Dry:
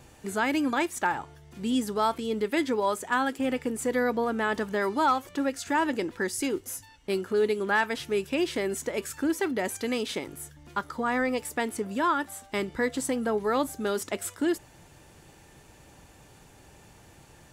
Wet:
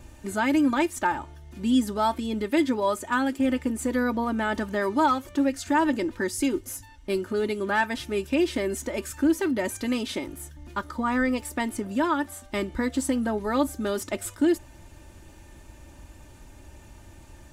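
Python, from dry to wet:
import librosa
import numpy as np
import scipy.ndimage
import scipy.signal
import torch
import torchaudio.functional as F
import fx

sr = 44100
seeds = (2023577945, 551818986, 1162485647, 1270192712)

y = fx.low_shelf(x, sr, hz=160.0, db=12.0)
y = y + 0.59 * np.pad(y, (int(3.3 * sr / 1000.0), 0))[:len(y)]
y = F.gain(torch.from_numpy(y), -1.0).numpy()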